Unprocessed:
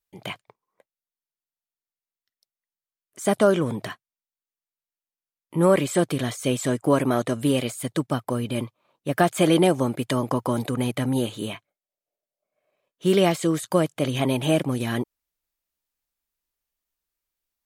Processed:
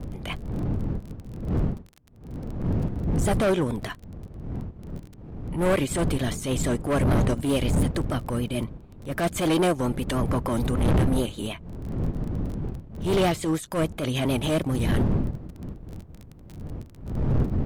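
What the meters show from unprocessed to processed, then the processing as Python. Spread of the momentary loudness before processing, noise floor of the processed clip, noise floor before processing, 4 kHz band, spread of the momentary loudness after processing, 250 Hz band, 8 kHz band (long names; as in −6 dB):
14 LU, −47 dBFS, below −85 dBFS, −2.0 dB, 17 LU, −1.0 dB, −2.0 dB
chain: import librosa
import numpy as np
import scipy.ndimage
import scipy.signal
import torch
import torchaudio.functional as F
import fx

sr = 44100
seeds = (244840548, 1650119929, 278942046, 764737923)

p1 = fx.dmg_wind(x, sr, seeds[0], corner_hz=160.0, level_db=-24.0)
p2 = 10.0 ** (-21.0 / 20.0) * np.tanh(p1 / 10.0 ** (-21.0 / 20.0))
p3 = p1 + F.gain(torch.from_numpy(p2), -8.0).numpy()
p4 = fx.vibrato(p3, sr, rate_hz=6.8, depth_cents=60.0)
p5 = fx.dmg_crackle(p4, sr, seeds[1], per_s=25.0, level_db=-30.0)
p6 = np.clip(10.0 ** (15.5 / 20.0) * p5, -1.0, 1.0) / 10.0 ** (15.5 / 20.0)
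p7 = fx.transient(p6, sr, attack_db=-9, sustain_db=-5)
y = F.gain(torch.from_numpy(p7), -1.5).numpy()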